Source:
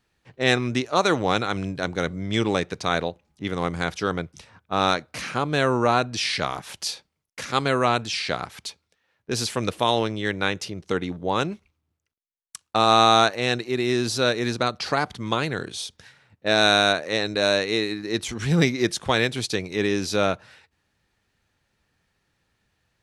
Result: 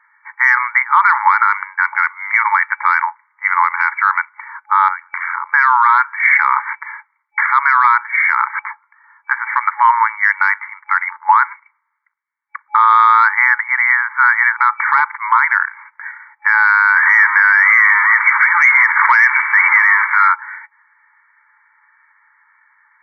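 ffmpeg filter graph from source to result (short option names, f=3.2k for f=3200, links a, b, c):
-filter_complex "[0:a]asettb=1/sr,asplit=3[a][b][c];[a]atrim=end=4.884[d];[b]atrim=start=4.88:end=5.54,asetpts=PTS-STARTPTS,afade=t=in:d=0.004:c=qsin,afade=t=out:st=0.656:d=0.004:c=qsin,acompressor=threshold=-33dB:ratio=6:attack=3.2:release=140:knee=1:detection=peak,tremolo=f=88:d=0.919[e];[c]atrim=start=5.536[f];[d][e]acrossfade=d=0.004:c1=hsin:c2=qsin[g];[g][f]acrossfade=d=0.004:c1=qsin:c2=hsin,asettb=1/sr,asplit=3[h][i][j];[h]atrim=end=8.534[k];[i]atrim=start=8.53:end=9.33,asetpts=PTS-STARTPTS,afade=t=in:d=0.004:c=qsin,afade=t=out:st=0.796:d=0.004:c=qsin,adynamicsmooth=sensitivity=6.5:basefreq=2.1k,equalizer=f=1.1k:w=0.85:g=7.5[l];[j]atrim=start=9.326[m];[k][l]acrossfade=d=0.004:c1=hsin:c2=qsin[n];[n][m]acrossfade=d=0.004:c1=qsin:c2=hsin,asettb=1/sr,asplit=3[o][p][q];[o]atrim=end=16.964[r];[p]atrim=start=16.96:end=20.28,asetpts=PTS-STARTPTS,afade=t=in:d=0.004:c=qsin,afade=t=out:st=3.316:d=0.004:c=qsin,aeval=exprs='val(0)+0.5*0.0708*sgn(val(0))':c=same,lowpass=2.8k,tiltshelf=f=1.2k:g=-10[s];[q]atrim=start=20.276[t];[r][s]acrossfade=d=0.004:c1=hsin:c2=qsin[u];[u][t]acrossfade=d=0.004:c1=qsin:c2=hsin,afftfilt=real='re*between(b*sr/4096,840,2300)':imag='im*between(b*sr/4096,840,2300)':win_size=4096:overlap=0.75,acontrast=86,alimiter=level_in=17dB:limit=-1dB:release=50:level=0:latency=1,volume=-1dB"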